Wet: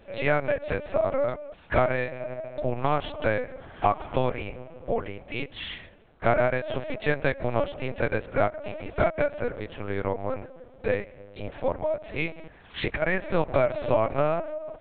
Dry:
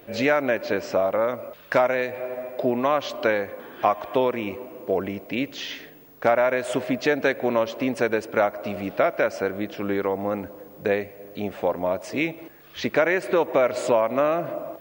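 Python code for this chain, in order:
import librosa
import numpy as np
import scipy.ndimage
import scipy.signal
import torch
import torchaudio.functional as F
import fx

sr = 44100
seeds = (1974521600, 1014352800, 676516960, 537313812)

y = scipy.signal.sosfilt(scipy.signal.butter(2, 340.0, 'highpass', fs=sr, output='sos'), x)
y = fx.over_compress(y, sr, threshold_db=-26.0, ratio=-1.0, at=(12.32, 13.02))
y = fx.lpc_vocoder(y, sr, seeds[0], excitation='pitch_kept', order=8)
y = y * librosa.db_to_amplitude(-2.0)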